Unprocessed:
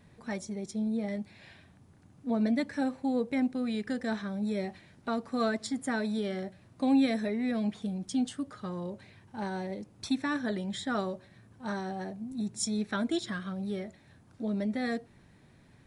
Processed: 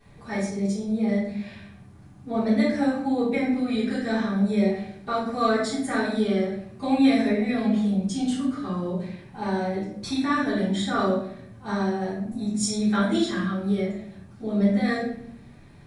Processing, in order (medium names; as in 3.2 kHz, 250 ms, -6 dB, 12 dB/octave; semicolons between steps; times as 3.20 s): simulated room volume 140 m³, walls mixed, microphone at 3.6 m; trim -4.5 dB